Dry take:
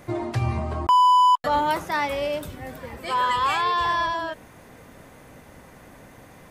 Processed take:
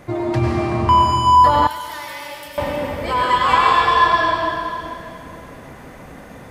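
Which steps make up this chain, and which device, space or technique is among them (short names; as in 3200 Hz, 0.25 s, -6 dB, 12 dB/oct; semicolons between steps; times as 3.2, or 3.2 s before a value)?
swimming-pool hall (reverb RT60 2.7 s, pre-delay 89 ms, DRR -3 dB; high shelf 5400 Hz -7 dB); 1.67–2.58 pre-emphasis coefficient 0.9; gain +4 dB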